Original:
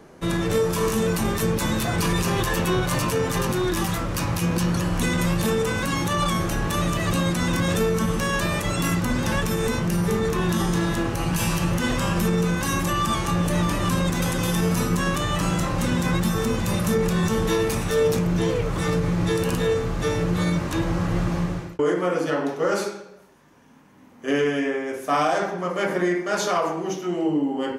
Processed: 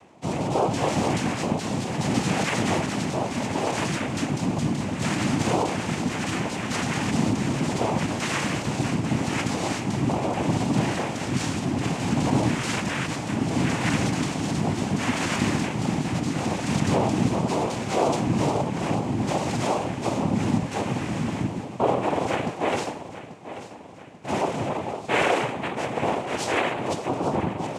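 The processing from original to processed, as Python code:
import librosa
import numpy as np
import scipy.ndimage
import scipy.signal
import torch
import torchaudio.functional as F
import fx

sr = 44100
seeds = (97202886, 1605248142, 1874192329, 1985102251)

p1 = fx.rotary(x, sr, hz=0.7)
p2 = fx.noise_vocoder(p1, sr, seeds[0], bands=4)
y = p2 + fx.echo_feedback(p2, sr, ms=838, feedback_pct=49, wet_db=-14, dry=0)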